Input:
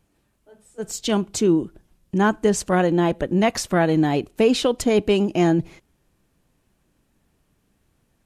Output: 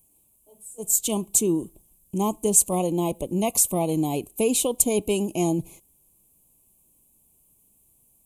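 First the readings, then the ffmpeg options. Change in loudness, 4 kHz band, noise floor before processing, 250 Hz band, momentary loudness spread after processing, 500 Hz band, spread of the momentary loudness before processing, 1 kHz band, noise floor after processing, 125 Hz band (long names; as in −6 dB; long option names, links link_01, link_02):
−2.5 dB, −6.0 dB, −68 dBFS, −5.5 dB, 10 LU, −5.5 dB, 10 LU, −6.0 dB, −63 dBFS, −5.5 dB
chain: -af "aexciter=amount=15.9:drive=3.8:freq=7400,asuperstop=centerf=1600:order=8:qfactor=1.4,volume=-5.5dB"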